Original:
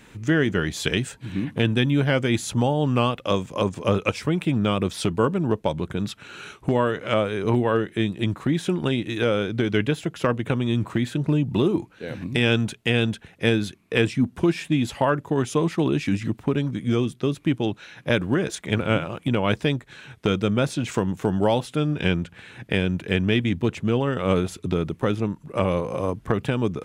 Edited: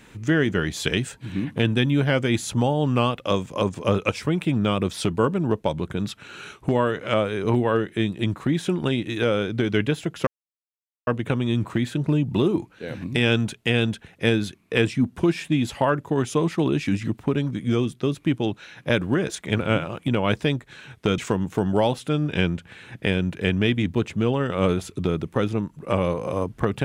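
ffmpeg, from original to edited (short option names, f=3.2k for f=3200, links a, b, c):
-filter_complex "[0:a]asplit=3[a][b][c];[a]atrim=end=10.27,asetpts=PTS-STARTPTS,afade=t=out:st=10.266:d=0.004:c=hsin,apad=pad_dur=0.8[d];[b]atrim=start=10.27:end=20.382,asetpts=PTS-STARTPTS,afade=t=in:d=0.004:c=hsin[e];[c]atrim=start=20.848[f];[d][e]concat=n=2:v=0:a=1[g];[g][f]acrossfade=d=0.004:c1=hsin:c2=hsin"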